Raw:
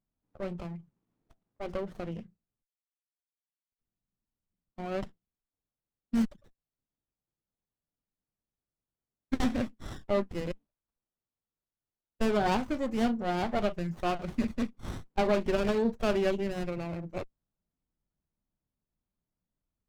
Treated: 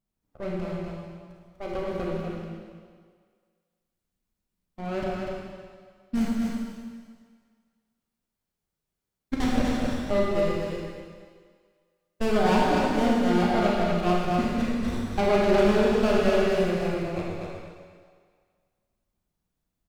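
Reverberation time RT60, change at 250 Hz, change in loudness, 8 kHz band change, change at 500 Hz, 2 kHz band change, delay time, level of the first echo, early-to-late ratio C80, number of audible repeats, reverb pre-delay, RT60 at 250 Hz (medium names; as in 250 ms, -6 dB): 1.8 s, +6.5 dB, +6.0 dB, +7.0 dB, +7.5 dB, +7.5 dB, 245 ms, -4.0 dB, -1.5 dB, 1, 29 ms, 1.6 s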